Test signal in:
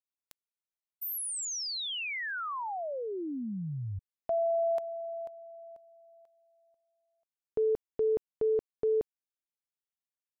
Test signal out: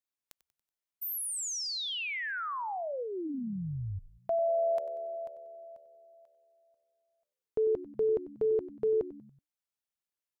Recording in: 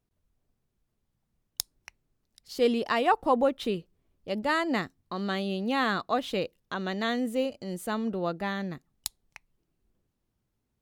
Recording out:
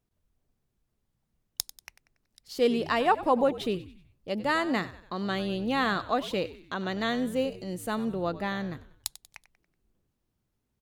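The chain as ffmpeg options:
ffmpeg -i in.wav -filter_complex "[0:a]asplit=5[link_01][link_02][link_03][link_04][link_05];[link_02]adelay=94,afreqshift=-75,volume=-16dB[link_06];[link_03]adelay=188,afreqshift=-150,volume=-22.6dB[link_07];[link_04]adelay=282,afreqshift=-225,volume=-29.1dB[link_08];[link_05]adelay=376,afreqshift=-300,volume=-35.7dB[link_09];[link_01][link_06][link_07][link_08][link_09]amix=inputs=5:normalize=0" out.wav

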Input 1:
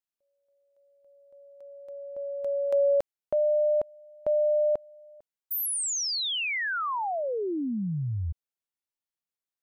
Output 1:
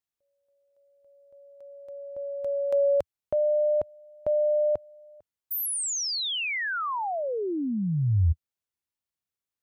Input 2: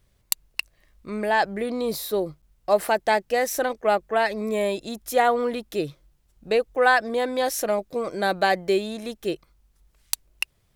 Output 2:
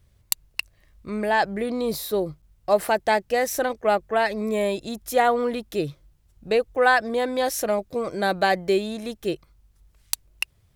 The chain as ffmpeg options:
ffmpeg -i in.wav -af "equalizer=frequency=85:width_type=o:width=1.4:gain=9.5" out.wav

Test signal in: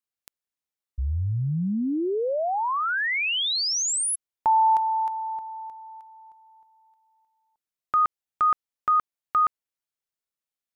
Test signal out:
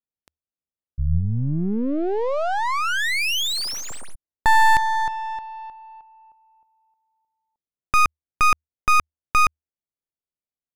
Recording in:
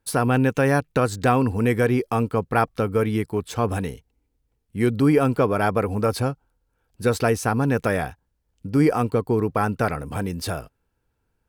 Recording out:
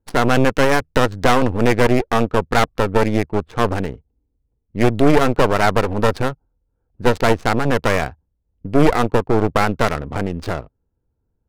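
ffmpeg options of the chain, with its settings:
ffmpeg -i in.wav -af "equalizer=frequency=78:width_type=o:width=0.21:gain=4,aeval=exprs='0.562*(cos(1*acos(clip(val(0)/0.562,-1,1)))-cos(1*PI/2))+0.158*(cos(6*acos(clip(val(0)/0.562,-1,1)))-cos(6*PI/2))':channel_layout=same,adynamicsmooth=sensitivity=4.5:basefreq=680,volume=2dB" out.wav

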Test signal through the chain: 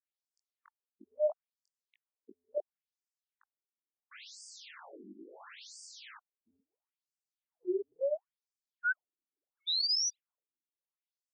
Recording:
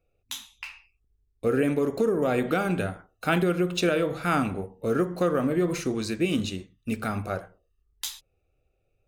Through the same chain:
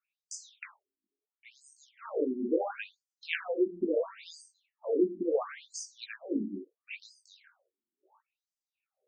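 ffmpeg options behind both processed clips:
ffmpeg -i in.wav -af "flanger=delay=18:depth=4.2:speed=2.1,afftfilt=real='re*between(b*sr/1024,260*pow(6600/260,0.5+0.5*sin(2*PI*0.73*pts/sr))/1.41,260*pow(6600/260,0.5+0.5*sin(2*PI*0.73*pts/sr))*1.41)':imag='im*between(b*sr/1024,260*pow(6600/260,0.5+0.5*sin(2*PI*0.73*pts/sr))/1.41,260*pow(6600/260,0.5+0.5*sin(2*PI*0.73*pts/sr))*1.41)':win_size=1024:overlap=0.75,volume=2.5dB" out.wav

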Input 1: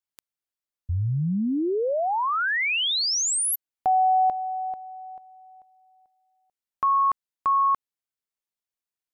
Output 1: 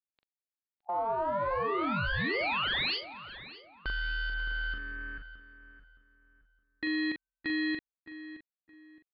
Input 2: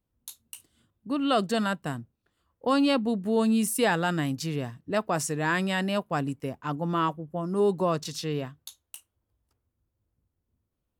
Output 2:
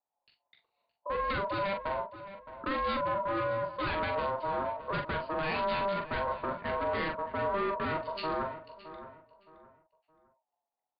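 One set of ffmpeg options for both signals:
ffmpeg -i in.wav -filter_complex "[0:a]aemphasis=mode=production:type=50fm,afwtdn=0.02,lowshelf=frequency=310:gain=3,acompressor=threshold=-24dB:ratio=6:attack=5.9:release=298:knee=1:detection=peak,aresample=8000,asoftclip=type=hard:threshold=-32.5dB,aresample=44100,aeval=exprs='val(0)*sin(2*PI*790*n/s)':channel_layout=same,asplit=2[link_01][link_02];[link_02]adelay=42,volume=-6dB[link_03];[link_01][link_03]amix=inputs=2:normalize=0,asplit=2[link_04][link_05];[link_05]adelay=617,lowpass=frequency=2400:poles=1,volume=-13dB,asplit=2[link_06][link_07];[link_07]adelay=617,lowpass=frequency=2400:poles=1,volume=0.31,asplit=2[link_08][link_09];[link_09]adelay=617,lowpass=frequency=2400:poles=1,volume=0.31[link_10];[link_06][link_08][link_10]amix=inputs=3:normalize=0[link_11];[link_04][link_11]amix=inputs=2:normalize=0,volume=4.5dB" out.wav

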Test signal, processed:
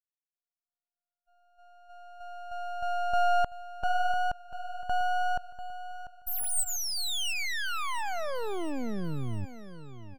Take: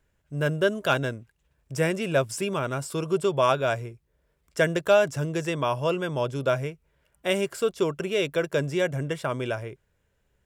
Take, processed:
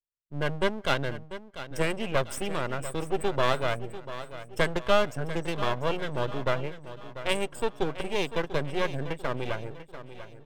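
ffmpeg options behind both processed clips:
ffmpeg -i in.wav -filter_complex "[0:a]equalizer=frequency=8200:width_type=o:width=0.25:gain=9,bandreject=frequency=7600:width=7.1,asplit=2[link_01][link_02];[link_02]adelay=170,highpass=300,lowpass=3400,asoftclip=type=hard:threshold=-18dB,volume=-28dB[link_03];[link_01][link_03]amix=inputs=2:normalize=0,afftdn=noise_reduction=34:noise_floor=-38,aeval=exprs='max(val(0),0)':channel_layout=same,equalizer=frequency=3200:width_type=o:width=0.77:gain=2,asplit=2[link_04][link_05];[link_05]aecho=0:1:693|1386|2079|2772:0.224|0.0963|0.0414|0.0178[link_06];[link_04][link_06]amix=inputs=2:normalize=0,aeval=exprs='0.376*(cos(1*acos(clip(val(0)/0.376,-1,1)))-cos(1*PI/2))+0.00237*(cos(6*acos(clip(val(0)/0.376,-1,1)))-cos(6*PI/2))':channel_layout=same" out.wav

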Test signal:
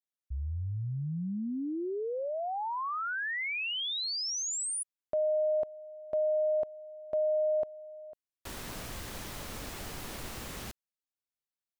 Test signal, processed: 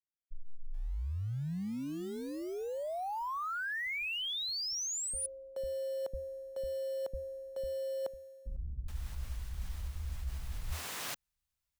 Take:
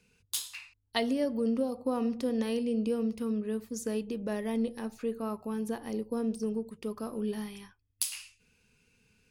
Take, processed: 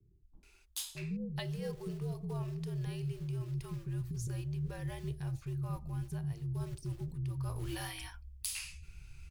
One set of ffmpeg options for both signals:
ffmpeg -i in.wav -filter_complex "[0:a]asplit=2[link_01][link_02];[link_02]acrusher=bits=4:mode=log:mix=0:aa=0.000001,volume=-5dB[link_03];[link_01][link_03]amix=inputs=2:normalize=0,asubboost=boost=11.5:cutoff=130,acrossover=split=400[link_04][link_05];[link_05]adelay=430[link_06];[link_04][link_06]amix=inputs=2:normalize=0,alimiter=limit=-20dB:level=0:latency=1:release=402,afreqshift=-80,areverse,acompressor=threshold=-38dB:ratio=6:attack=32:release=969:knee=1:detection=peak,areverse,volume=2dB" out.wav

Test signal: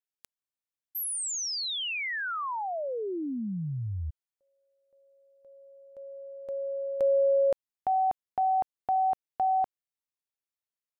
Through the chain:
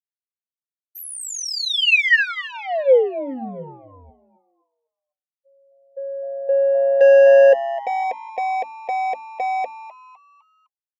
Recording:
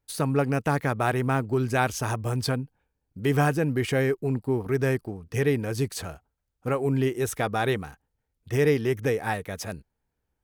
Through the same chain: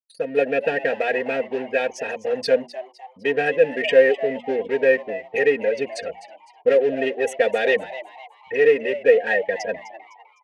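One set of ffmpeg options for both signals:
ffmpeg -i in.wav -filter_complex "[0:a]afftfilt=real='re*gte(hypot(re,im),0.0224)':imag='im*gte(hypot(re,im),0.0224)':win_size=1024:overlap=0.75,asplit=2[link_01][link_02];[link_02]acrusher=bits=4:mix=0:aa=0.5,volume=-11dB[link_03];[link_01][link_03]amix=inputs=2:normalize=0,anlmdn=1,equalizer=frequency=1300:width_type=o:width=0.99:gain=-3,dynaudnorm=framelen=220:gausssize=3:maxgain=16dB,bandreject=frequency=60:width_type=h:width=6,bandreject=frequency=120:width_type=h:width=6,bandreject=frequency=180:width_type=h:width=6,bandreject=frequency=240:width_type=h:width=6,bandreject=frequency=300:width_type=h:width=6,acontrast=69,crystalizer=i=6.5:c=0,asplit=3[link_04][link_05][link_06];[link_04]bandpass=frequency=530:width_type=q:width=8,volume=0dB[link_07];[link_05]bandpass=frequency=1840:width_type=q:width=8,volume=-6dB[link_08];[link_06]bandpass=frequency=2480:width_type=q:width=8,volume=-9dB[link_09];[link_07][link_08][link_09]amix=inputs=3:normalize=0,highshelf=frequency=4700:gain=-11.5,aecho=1:1:4.3:0.78,asplit=5[link_10][link_11][link_12][link_13][link_14];[link_11]adelay=254,afreqshift=130,volume=-15dB[link_15];[link_12]adelay=508,afreqshift=260,volume=-23.2dB[link_16];[link_13]adelay=762,afreqshift=390,volume=-31.4dB[link_17];[link_14]adelay=1016,afreqshift=520,volume=-39.5dB[link_18];[link_10][link_15][link_16][link_17][link_18]amix=inputs=5:normalize=0,volume=-3dB" out.wav

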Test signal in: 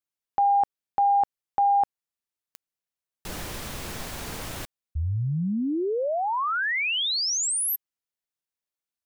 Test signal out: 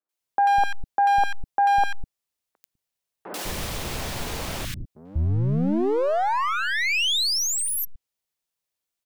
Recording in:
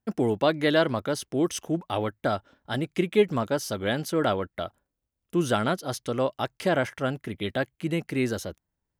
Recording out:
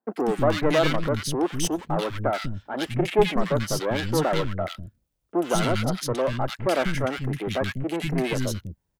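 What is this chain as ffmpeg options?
ffmpeg -i in.wav -filter_complex "[0:a]aeval=exprs='clip(val(0),-1,0.0299)':channel_layout=same,acrossover=split=250|1500[link_01][link_02][link_03];[link_03]adelay=90[link_04];[link_01]adelay=200[link_05];[link_05][link_02][link_04]amix=inputs=3:normalize=0,adynamicequalizer=threshold=0.00447:dfrequency=5600:dqfactor=0.7:tfrequency=5600:tqfactor=0.7:attack=5:release=100:ratio=0.375:range=2.5:mode=cutabove:tftype=highshelf,volume=6.5dB" out.wav

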